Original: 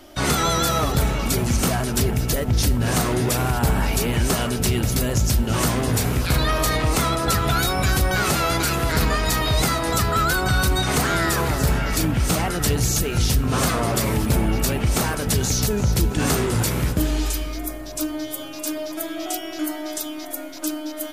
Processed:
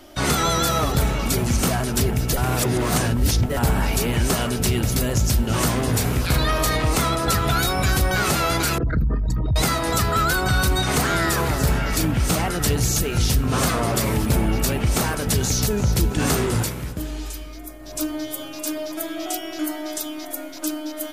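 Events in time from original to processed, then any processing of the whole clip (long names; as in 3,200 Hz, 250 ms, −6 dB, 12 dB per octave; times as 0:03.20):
0:02.37–0:03.57: reverse
0:08.78–0:09.56: spectral envelope exaggerated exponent 3
0:16.57–0:17.97: duck −8 dB, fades 0.18 s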